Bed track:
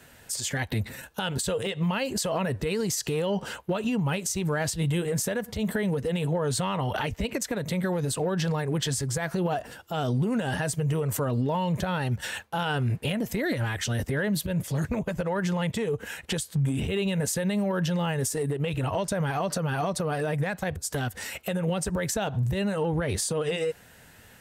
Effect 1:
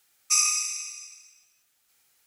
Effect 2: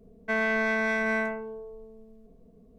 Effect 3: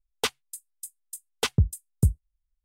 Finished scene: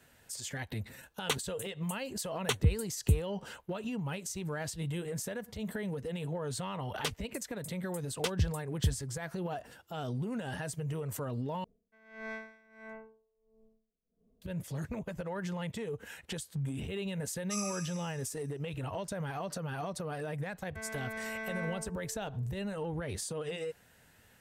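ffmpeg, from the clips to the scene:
ffmpeg -i bed.wav -i cue0.wav -i cue1.wav -i cue2.wav -filter_complex "[3:a]asplit=2[link_01][link_02];[2:a]asplit=2[link_03][link_04];[0:a]volume=-10dB[link_05];[link_01]asuperstop=centerf=5000:order=4:qfactor=4.4[link_06];[link_03]aeval=exprs='val(0)*pow(10,-24*(0.5-0.5*cos(2*PI*1.5*n/s))/20)':channel_layout=same[link_07];[1:a]equalizer=frequency=1300:width_type=o:width=0.36:gain=13.5[link_08];[link_04]dynaudnorm=framelen=260:gausssize=5:maxgain=6dB[link_09];[link_05]asplit=2[link_10][link_11];[link_10]atrim=end=11.644[link_12];[link_07]atrim=end=2.78,asetpts=PTS-STARTPTS,volume=-13.5dB[link_13];[link_11]atrim=start=14.416[link_14];[link_06]atrim=end=2.64,asetpts=PTS-STARTPTS,volume=-5dB,afade=type=in:duration=0.004:curve=hsin,afade=type=out:start_time=2.636:duration=0.004:curve=hsin,adelay=1060[link_15];[link_02]atrim=end=2.64,asetpts=PTS-STARTPTS,volume=-8.5dB,afade=type=in:duration=0.004:curve=hsin,afade=type=out:start_time=2.636:duration=0.004:curve=hsin,adelay=6810[link_16];[link_08]atrim=end=2.26,asetpts=PTS-STARTPTS,volume=-17.5dB,afade=type=in:duration=0.004:curve=hsin,afade=type=out:start_time=2.256:duration=0.004:curve=hsin,adelay=17200[link_17];[link_09]atrim=end=2.78,asetpts=PTS-STARTPTS,volume=-18dB,afade=type=in:duration=0.004:curve=hsin,afade=type=out:start_time=2.776:duration=0.004:curve=hsin,adelay=20470[link_18];[link_12][link_13]acrossfade=duration=0.004:curve1=hsin:curve2=hsin[link_19];[link_19][link_14]acrossfade=duration=0.004:curve1=hsin:curve2=hsin[link_20];[link_20][link_15][link_16][link_17][link_18]amix=inputs=5:normalize=0" out.wav

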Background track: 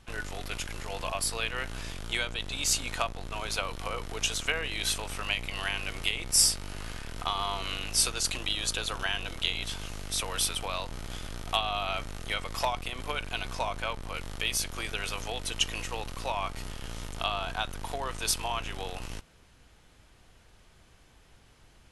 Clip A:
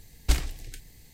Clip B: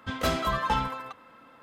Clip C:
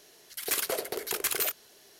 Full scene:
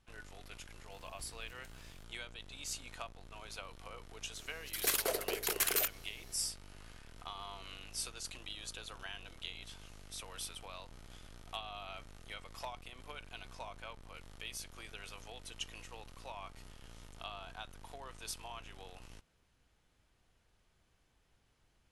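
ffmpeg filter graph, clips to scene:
ffmpeg -i bed.wav -i cue0.wav -i cue1.wav -i cue2.wav -filter_complex "[0:a]volume=-15dB[link_01];[1:a]acompressor=threshold=-38dB:ratio=6:attack=3.2:release=140:knee=1:detection=peak,atrim=end=1.13,asetpts=PTS-STARTPTS,volume=-13dB,afade=type=in:duration=0.004:curve=hsin,afade=type=out:start_time=1.126:duration=0.004:curve=hsin,adelay=910[link_02];[3:a]atrim=end=1.99,asetpts=PTS-STARTPTS,volume=-3dB,afade=type=in:duration=0.004:curve=hsin,afade=type=out:start_time=1.986:duration=0.004:curve=hsin,adelay=4360[link_03];[link_01][link_02][link_03]amix=inputs=3:normalize=0" out.wav

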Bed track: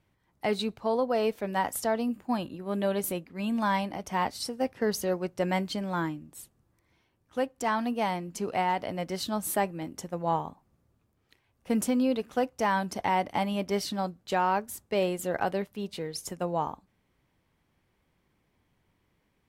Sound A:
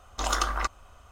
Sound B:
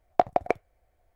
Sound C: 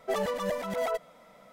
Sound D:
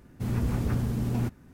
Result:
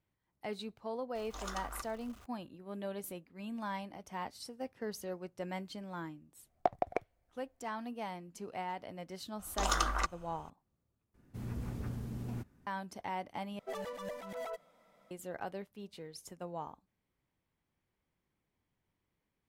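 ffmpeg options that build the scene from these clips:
ffmpeg -i bed.wav -i cue0.wav -i cue1.wav -i cue2.wav -i cue3.wav -filter_complex "[1:a]asplit=2[link_01][link_02];[0:a]volume=-12.5dB[link_03];[link_01]aeval=exprs='val(0)+0.5*0.015*sgn(val(0))':channel_layout=same[link_04];[link_03]asplit=3[link_05][link_06][link_07];[link_05]atrim=end=11.144[link_08];[4:a]atrim=end=1.53,asetpts=PTS-STARTPTS,volume=-12.5dB[link_09];[link_06]atrim=start=12.666:end=13.594[link_10];[3:a]atrim=end=1.52,asetpts=PTS-STARTPTS,volume=-11.5dB[link_11];[link_07]atrim=start=15.106[link_12];[link_04]atrim=end=1.11,asetpts=PTS-STARTPTS,volume=-17dB,afade=type=in:duration=0.004:curve=hsin,afade=type=out:start_time=1.106:duration=0.004:curve=hsin,adelay=1150[link_13];[2:a]atrim=end=1.15,asetpts=PTS-STARTPTS,volume=-9.5dB,afade=type=in:duration=0.004:curve=hsin,afade=type=out:start_time=1.146:duration=0.004:curve=hsin,adelay=6460[link_14];[link_02]atrim=end=1.11,asetpts=PTS-STARTPTS,volume=-4.5dB,afade=type=in:duration=0.004:curve=hsin,afade=type=out:start_time=1.106:duration=0.004:curve=hsin,adelay=9390[link_15];[link_08][link_09]acrossfade=duration=0.004:curve1=hsin:curve2=hsin[link_16];[link_16][link_10]acrossfade=duration=0.004:curve1=hsin:curve2=hsin[link_17];[link_17][link_11]acrossfade=duration=0.004:curve1=hsin:curve2=hsin[link_18];[link_18][link_12]acrossfade=duration=0.004:curve1=hsin:curve2=hsin[link_19];[link_19][link_13][link_14][link_15]amix=inputs=4:normalize=0" out.wav

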